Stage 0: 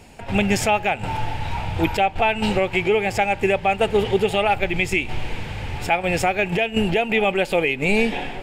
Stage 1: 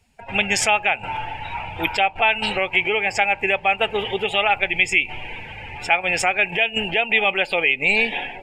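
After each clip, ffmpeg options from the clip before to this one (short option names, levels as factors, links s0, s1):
-af "afftdn=nr=21:nf=-35,tiltshelf=f=630:g=-9,volume=0.75"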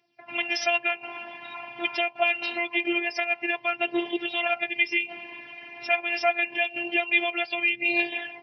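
-af "aphaser=in_gain=1:out_gain=1:delay=4.8:decay=0.44:speed=0.25:type=triangular,afftfilt=real='hypot(re,im)*cos(PI*b)':imag='0':win_size=512:overlap=0.75,afftfilt=real='re*between(b*sr/4096,110,5900)':imag='im*between(b*sr/4096,110,5900)':win_size=4096:overlap=0.75,volume=0.668"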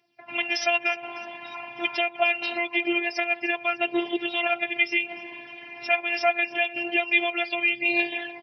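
-af "aecho=1:1:302|604|906|1208:0.106|0.054|0.0276|0.0141,volume=1.12"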